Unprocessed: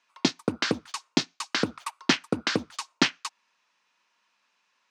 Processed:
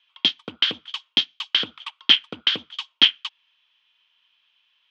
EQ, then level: synth low-pass 3200 Hz, resonance Q 14; tilt shelf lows -4.5 dB, about 1100 Hz; -6.5 dB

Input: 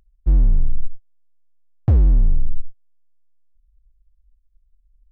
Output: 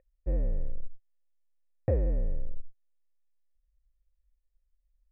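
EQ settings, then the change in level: vocal tract filter e; bell 650 Hz +4.5 dB 2.5 oct; +6.0 dB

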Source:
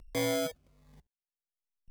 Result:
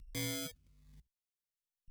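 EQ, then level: passive tone stack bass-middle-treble 6-0-2; +12.0 dB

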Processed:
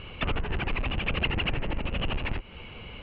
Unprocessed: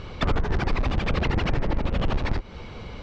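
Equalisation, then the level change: ladder low-pass 3000 Hz, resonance 75%; air absorption 92 m; +6.0 dB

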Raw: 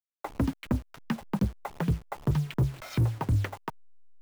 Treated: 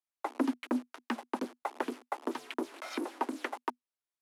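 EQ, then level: rippled Chebyshev high-pass 240 Hz, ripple 3 dB; air absorption 54 m; bell 11000 Hz +9.5 dB 0.58 oct; +2.5 dB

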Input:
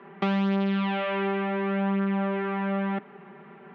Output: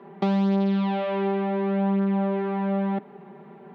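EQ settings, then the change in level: band shelf 1900 Hz -9 dB; +3.0 dB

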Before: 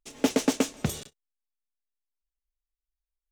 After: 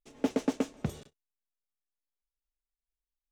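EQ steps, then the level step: high shelf 2000 Hz -10.5 dB; high shelf 8500 Hz -3.5 dB; -4.5 dB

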